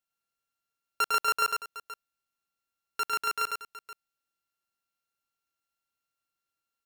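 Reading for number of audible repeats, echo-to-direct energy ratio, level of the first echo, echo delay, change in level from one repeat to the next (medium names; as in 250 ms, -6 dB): 2, -3.0 dB, -3.5 dB, 103 ms, no regular repeats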